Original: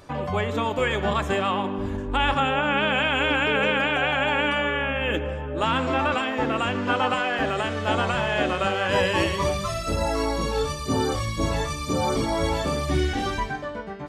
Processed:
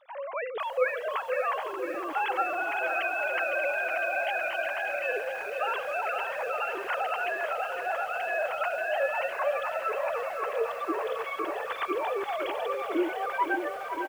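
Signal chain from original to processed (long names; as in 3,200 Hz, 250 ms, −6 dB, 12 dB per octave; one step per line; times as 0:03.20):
three sine waves on the formant tracks
slap from a distant wall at 100 metres, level −8 dB
feedback echo at a low word length 508 ms, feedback 80%, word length 7 bits, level −9 dB
level −7.5 dB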